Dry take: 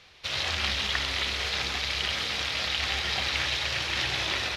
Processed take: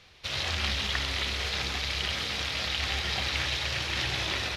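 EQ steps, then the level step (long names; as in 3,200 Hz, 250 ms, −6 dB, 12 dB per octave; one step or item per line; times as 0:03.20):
low-shelf EQ 320 Hz +6 dB
high-shelf EQ 9,400 Hz +4.5 dB
−2.5 dB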